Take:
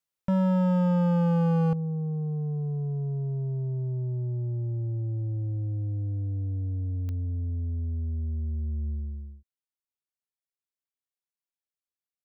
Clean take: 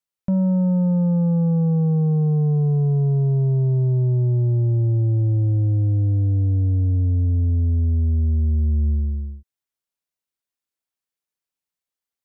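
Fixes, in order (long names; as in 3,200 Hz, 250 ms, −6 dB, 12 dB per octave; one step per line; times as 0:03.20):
clipped peaks rebuilt −22 dBFS
click removal
level correction +11.5 dB, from 0:01.73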